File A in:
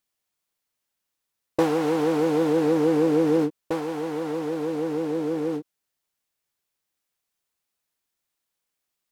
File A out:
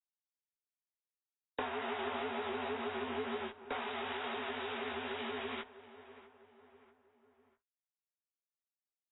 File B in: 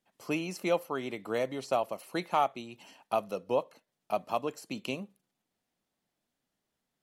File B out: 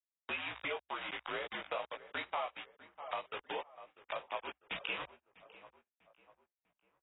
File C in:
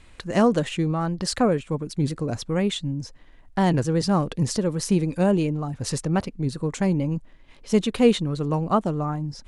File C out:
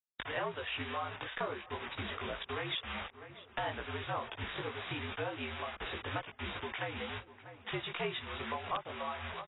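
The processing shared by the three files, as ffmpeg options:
ffmpeg -i in.wav -filter_complex "[0:a]aresample=16000,acrusher=bits=5:mix=0:aa=0.000001,aresample=44100,flanger=delay=16.5:depth=2.9:speed=2.1,asplit=2[link_01][link_02];[link_02]adelay=647,lowpass=frequency=2100:poles=1,volume=-22dB,asplit=2[link_03][link_04];[link_04]adelay=647,lowpass=frequency=2100:poles=1,volume=0.49,asplit=2[link_05][link_06];[link_06]adelay=647,lowpass=frequency=2100:poles=1,volume=0.49[link_07];[link_01][link_03][link_05][link_07]amix=inputs=4:normalize=0,aeval=exprs='0.473*(cos(1*acos(clip(val(0)/0.473,-1,1)))-cos(1*PI/2))+0.00944*(cos(7*acos(clip(val(0)/0.473,-1,1)))-cos(7*PI/2))':channel_layout=same,acrossover=split=580 4500:gain=0.0891 1 0.0708[link_08][link_09][link_10];[link_08][link_09][link_10]amix=inputs=3:normalize=0,acompressor=threshold=-47dB:ratio=3,equalizer=frequency=460:width=0.59:gain=-4.5,aeval=exprs='(mod(44.7*val(0)+1,2)-1)/44.7':channel_layout=same,afreqshift=-67,volume=10.5dB" -ar 16000 -c:a aac -b:a 16k out.aac

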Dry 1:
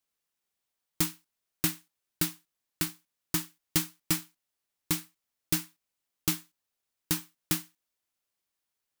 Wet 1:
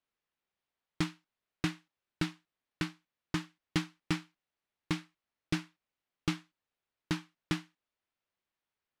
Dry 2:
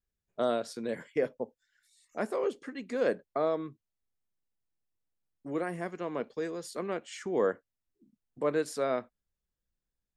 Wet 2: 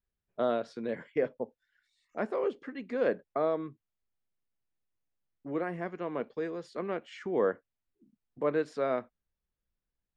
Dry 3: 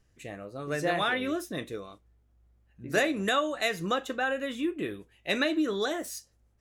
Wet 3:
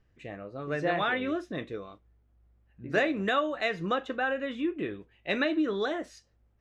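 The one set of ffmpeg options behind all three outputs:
ffmpeg -i in.wav -af "lowpass=3100" out.wav

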